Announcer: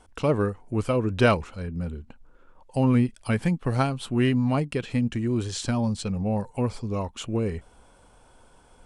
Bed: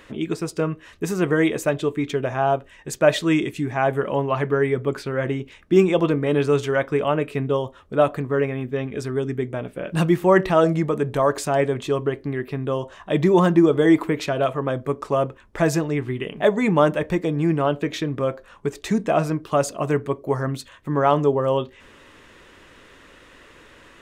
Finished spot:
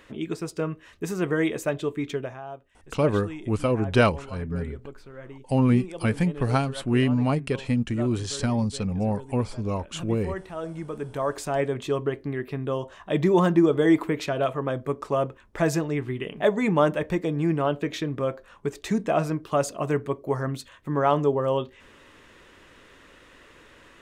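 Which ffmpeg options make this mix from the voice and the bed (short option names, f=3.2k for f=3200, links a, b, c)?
-filter_complex "[0:a]adelay=2750,volume=0.5dB[a];[1:a]volume=10dB,afade=t=out:st=2.14:d=0.27:silence=0.211349,afade=t=in:st=10.55:d=1.32:silence=0.177828[b];[a][b]amix=inputs=2:normalize=0"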